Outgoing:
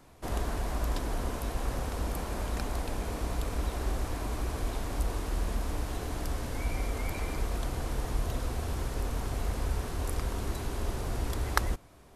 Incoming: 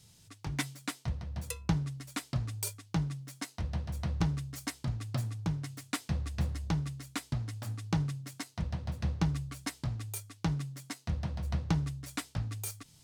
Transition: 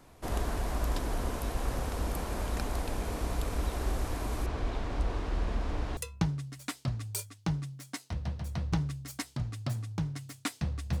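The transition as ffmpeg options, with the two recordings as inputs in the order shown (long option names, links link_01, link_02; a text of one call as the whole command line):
ffmpeg -i cue0.wav -i cue1.wav -filter_complex "[0:a]asettb=1/sr,asplit=3[link_01][link_02][link_03];[link_01]atrim=end=4.464[link_04];[link_02]atrim=start=4.46:end=5.97,asetpts=PTS-STARTPTS,afade=type=in:duration=0.004:curve=qsin,afade=type=out:start_time=1.506:duration=0.004:curve=qsin,lowpass=4200[link_05];[link_03]atrim=start=5.966[link_06];[link_04][link_05]acrossfade=duration=0.004:curve1=hsin:curve2=qsin[link_07];[link_07][link_06]acrossfade=duration=0.004:curve1=qsin:curve2=hsin,apad=whole_dur=11,atrim=end=11,atrim=end=5.972[link_08];[1:a]atrim=start=1.448:end=6.48[link_09];[link_08][link_09]acrossfade=duration=0.004:curve1=hsin:curve2=hsin" out.wav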